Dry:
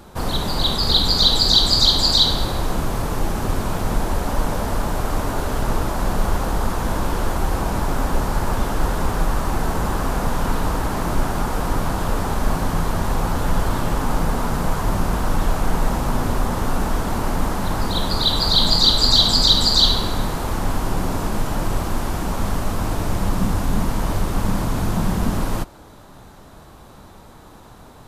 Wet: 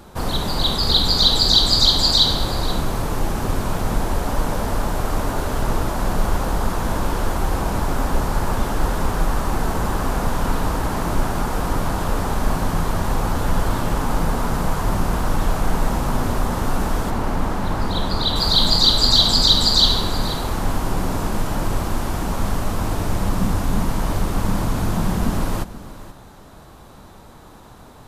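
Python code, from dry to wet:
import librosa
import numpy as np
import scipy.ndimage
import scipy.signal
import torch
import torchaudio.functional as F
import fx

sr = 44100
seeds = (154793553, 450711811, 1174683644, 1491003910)

y = fx.high_shelf(x, sr, hz=5200.0, db=-9.0, at=(17.1, 18.36))
y = y + 10.0 ** (-16.0 / 20.0) * np.pad(y, (int(481 * sr / 1000.0), 0))[:len(y)]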